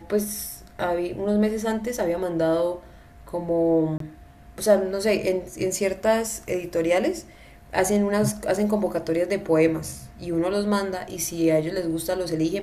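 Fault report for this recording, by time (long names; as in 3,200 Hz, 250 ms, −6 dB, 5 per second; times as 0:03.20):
0:03.98–0:04.00: drop-out 23 ms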